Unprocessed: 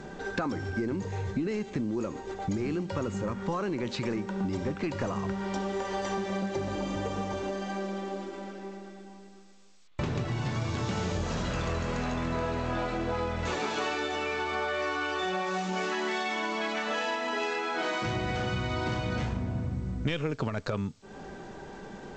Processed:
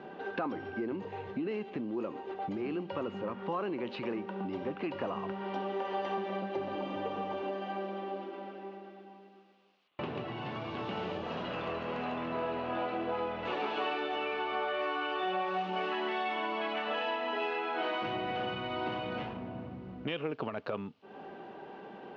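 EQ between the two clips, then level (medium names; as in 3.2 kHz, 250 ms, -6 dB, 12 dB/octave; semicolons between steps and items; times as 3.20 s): cabinet simulation 330–4200 Hz, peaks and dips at 750 Hz +4 dB, 1.1 kHz +3 dB, 2.7 kHz +4 dB; tilt EQ -2.5 dB/octave; peaking EQ 2.9 kHz +6 dB 0.28 oct; -4.5 dB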